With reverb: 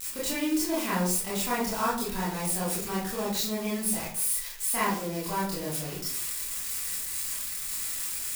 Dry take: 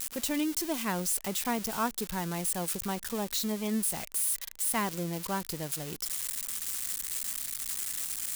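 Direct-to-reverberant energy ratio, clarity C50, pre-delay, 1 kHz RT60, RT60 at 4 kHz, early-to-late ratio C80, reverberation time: -8.5 dB, 3.5 dB, 21 ms, 0.50 s, 0.35 s, 8.5 dB, 0.55 s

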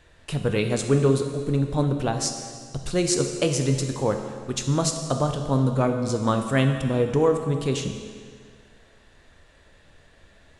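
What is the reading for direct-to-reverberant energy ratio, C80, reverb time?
5.0 dB, 7.5 dB, 1.9 s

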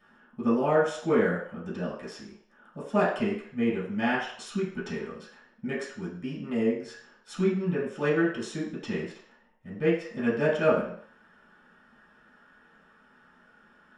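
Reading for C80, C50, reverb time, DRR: 8.0 dB, 4.0 dB, 0.60 s, -10.5 dB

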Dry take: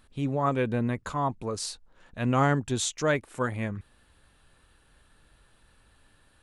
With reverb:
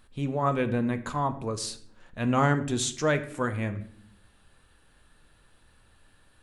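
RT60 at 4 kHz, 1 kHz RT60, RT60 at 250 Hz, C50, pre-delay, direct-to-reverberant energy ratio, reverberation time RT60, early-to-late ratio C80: 0.45 s, 0.55 s, 1.0 s, 14.0 dB, 4 ms, 9.5 dB, 0.65 s, 17.0 dB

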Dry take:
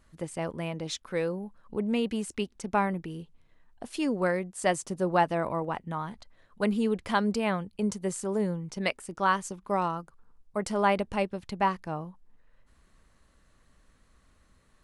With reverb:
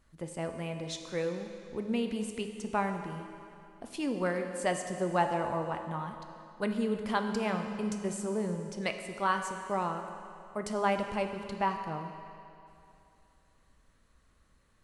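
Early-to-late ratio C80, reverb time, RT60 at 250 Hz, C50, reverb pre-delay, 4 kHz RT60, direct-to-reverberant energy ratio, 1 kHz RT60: 7.5 dB, 2.7 s, 2.7 s, 6.5 dB, 9 ms, 2.5 s, 5.5 dB, 2.7 s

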